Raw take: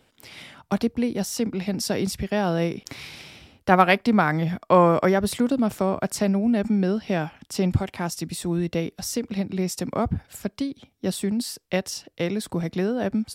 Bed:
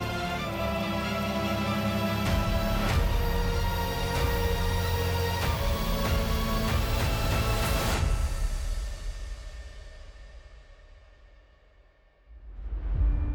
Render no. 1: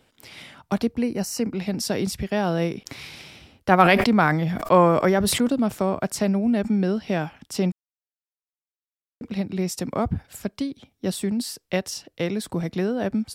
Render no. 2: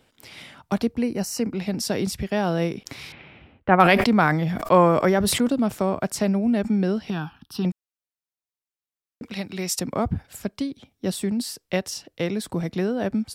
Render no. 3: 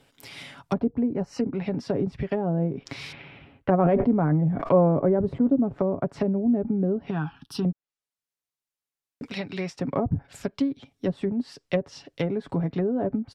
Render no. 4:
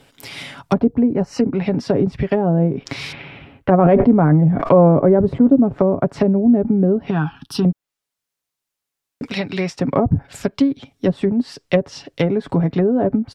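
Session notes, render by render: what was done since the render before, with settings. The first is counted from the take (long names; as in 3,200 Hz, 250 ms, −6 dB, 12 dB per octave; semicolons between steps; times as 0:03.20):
0:01.02–0:01.53: Butterworth band-reject 3,500 Hz, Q 3.3; 0:03.78–0:05.48: level that may fall only so fast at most 37 dB per second; 0:07.72–0:09.21: silence
0:03.12–0:03.80: low-pass filter 2,600 Hz 24 dB per octave; 0:07.10–0:07.65: phaser with its sweep stopped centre 2,100 Hz, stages 6; 0:09.23–0:09.80: tilt shelving filter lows −6.5 dB, about 740 Hz
treble cut that deepens with the level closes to 520 Hz, closed at −19.5 dBFS; comb filter 7.2 ms, depth 44%
level +9 dB; brickwall limiter −3 dBFS, peak gain reduction 3 dB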